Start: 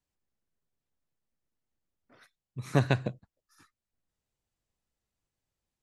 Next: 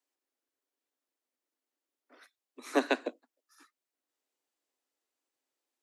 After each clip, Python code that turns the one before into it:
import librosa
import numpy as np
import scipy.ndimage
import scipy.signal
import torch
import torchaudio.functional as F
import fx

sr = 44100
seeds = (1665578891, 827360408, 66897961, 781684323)

y = scipy.signal.sosfilt(scipy.signal.butter(16, 250.0, 'highpass', fs=sr, output='sos'), x)
y = y * 10.0 ** (1.0 / 20.0)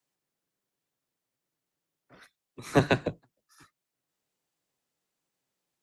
y = fx.octave_divider(x, sr, octaves=1, level_db=3.0)
y = y * 10.0 ** (3.5 / 20.0)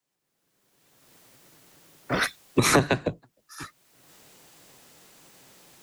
y = fx.recorder_agc(x, sr, target_db=-11.5, rise_db_per_s=26.0, max_gain_db=30)